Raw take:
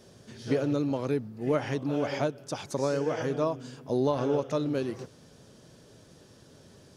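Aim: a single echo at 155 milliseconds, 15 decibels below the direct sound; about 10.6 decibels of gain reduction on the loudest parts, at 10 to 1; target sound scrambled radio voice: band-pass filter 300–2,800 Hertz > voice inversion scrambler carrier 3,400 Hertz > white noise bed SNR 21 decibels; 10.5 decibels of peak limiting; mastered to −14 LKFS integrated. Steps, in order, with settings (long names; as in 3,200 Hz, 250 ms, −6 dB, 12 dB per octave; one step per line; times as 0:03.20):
downward compressor 10 to 1, threshold −32 dBFS
brickwall limiter −30.5 dBFS
band-pass filter 300–2,800 Hz
single-tap delay 155 ms −15 dB
voice inversion scrambler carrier 3,400 Hz
white noise bed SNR 21 dB
level +25.5 dB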